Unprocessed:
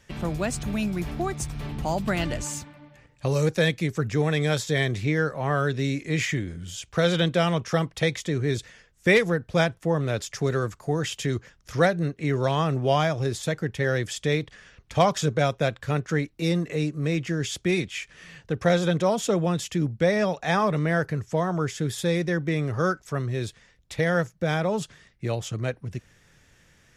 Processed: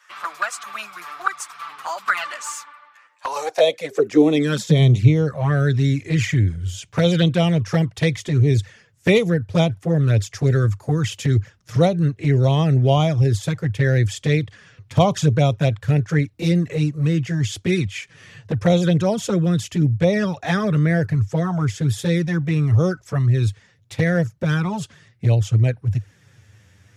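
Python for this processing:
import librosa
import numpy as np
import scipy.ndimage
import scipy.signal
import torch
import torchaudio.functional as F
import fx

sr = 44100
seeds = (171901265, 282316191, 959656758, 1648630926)

y = fx.filter_sweep_highpass(x, sr, from_hz=1200.0, to_hz=100.0, start_s=3.08, end_s=5.18, q=6.1)
y = fx.env_flanger(y, sr, rest_ms=10.7, full_db=-15.5)
y = y * librosa.db_to_amplitude(4.5)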